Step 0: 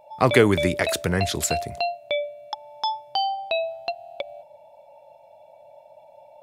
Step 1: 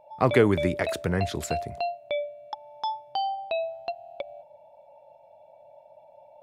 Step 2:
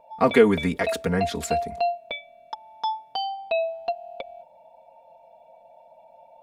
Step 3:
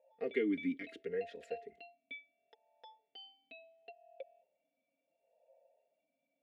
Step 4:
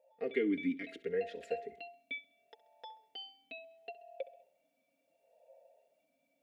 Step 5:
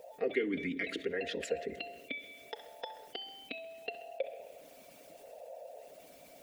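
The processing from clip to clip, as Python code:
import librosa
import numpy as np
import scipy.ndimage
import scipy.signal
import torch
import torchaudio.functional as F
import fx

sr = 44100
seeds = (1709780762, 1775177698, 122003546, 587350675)

y1 = fx.high_shelf(x, sr, hz=2700.0, db=-10.5)
y1 = y1 * 10.0 ** (-2.5 / 20.0)
y2 = y1 + 0.95 * np.pad(y1, (int(4.3 * sr / 1000.0), 0))[:len(y1)]
y3 = fx.vowel_sweep(y2, sr, vowels='e-i', hz=0.72)
y3 = y3 * 10.0 ** (-6.5 / 20.0)
y4 = fx.rider(y3, sr, range_db=10, speed_s=2.0)
y4 = fx.echo_feedback(y4, sr, ms=66, feedback_pct=45, wet_db=-18.5)
y4 = y4 * 10.0 ** (2.0 / 20.0)
y5 = fx.rev_schroeder(y4, sr, rt60_s=1.0, comb_ms=26, drr_db=14.0)
y5 = fx.hpss(y5, sr, part='harmonic', gain_db=-18)
y5 = fx.env_flatten(y5, sr, amount_pct=50)
y5 = y5 * 10.0 ** (3.5 / 20.0)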